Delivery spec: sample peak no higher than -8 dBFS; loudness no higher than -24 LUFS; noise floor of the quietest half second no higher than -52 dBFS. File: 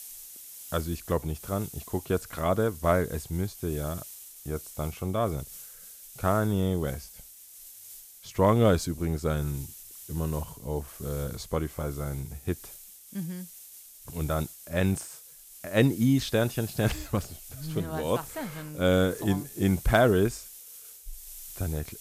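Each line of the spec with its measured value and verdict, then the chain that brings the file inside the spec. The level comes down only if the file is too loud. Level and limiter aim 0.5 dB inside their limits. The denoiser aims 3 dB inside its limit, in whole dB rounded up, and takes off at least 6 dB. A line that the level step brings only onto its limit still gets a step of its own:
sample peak -9.0 dBFS: OK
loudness -29.0 LUFS: OK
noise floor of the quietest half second -49 dBFS: fail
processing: denoiser 6 dB, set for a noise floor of -49 dBFS

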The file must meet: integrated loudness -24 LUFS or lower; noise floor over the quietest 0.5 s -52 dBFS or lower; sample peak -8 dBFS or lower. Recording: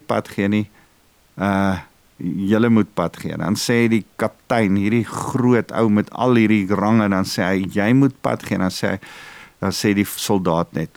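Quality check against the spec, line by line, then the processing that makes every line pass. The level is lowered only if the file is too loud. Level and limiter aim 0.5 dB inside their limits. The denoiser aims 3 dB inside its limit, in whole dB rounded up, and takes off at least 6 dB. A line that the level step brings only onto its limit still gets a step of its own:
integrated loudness -19.0 LUFS: fail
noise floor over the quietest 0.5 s -56 dBFS: OK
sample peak -4.5 dBFS: fail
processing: gain -5.5 dB

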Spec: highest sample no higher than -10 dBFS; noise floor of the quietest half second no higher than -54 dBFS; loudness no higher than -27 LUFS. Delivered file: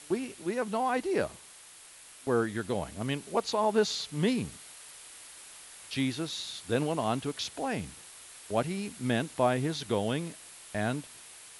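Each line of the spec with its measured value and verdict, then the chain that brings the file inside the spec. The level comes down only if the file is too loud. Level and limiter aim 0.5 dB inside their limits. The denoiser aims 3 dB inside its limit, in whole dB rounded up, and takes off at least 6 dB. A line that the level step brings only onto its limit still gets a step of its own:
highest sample -13.0 dBFS: OK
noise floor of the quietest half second -52 dBFS: fail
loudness -31.5 LUFS: OK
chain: denoiser 6 dB, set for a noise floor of -52 dBFS

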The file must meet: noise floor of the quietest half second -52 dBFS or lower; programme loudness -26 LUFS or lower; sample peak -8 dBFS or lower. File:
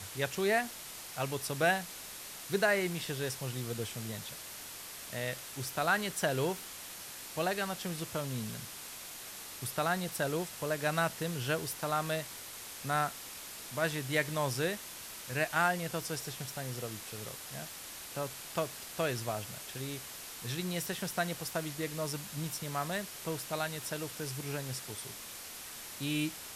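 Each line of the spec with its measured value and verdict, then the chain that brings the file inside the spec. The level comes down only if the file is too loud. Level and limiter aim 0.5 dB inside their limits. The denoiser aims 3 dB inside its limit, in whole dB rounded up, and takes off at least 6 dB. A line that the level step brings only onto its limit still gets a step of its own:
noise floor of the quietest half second -46 dBFS: fail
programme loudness -35.5 LUFS: OK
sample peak -15.0 dBFS: OK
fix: denoiser 9 dB, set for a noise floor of -46 dBFS

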